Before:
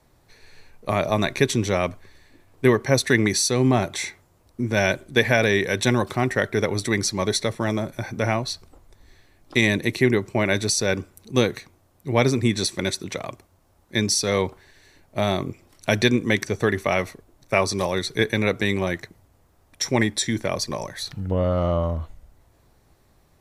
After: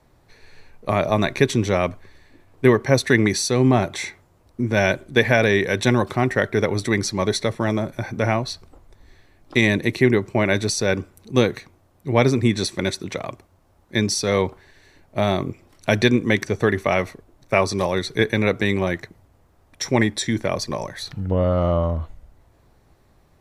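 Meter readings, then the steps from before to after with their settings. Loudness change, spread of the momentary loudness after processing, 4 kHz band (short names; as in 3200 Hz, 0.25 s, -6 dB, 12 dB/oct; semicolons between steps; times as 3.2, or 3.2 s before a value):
+2.0 dB, 12 LU, -1.0 dB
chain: high shelf 4200 Hz -7 dB; gain +2.5 dB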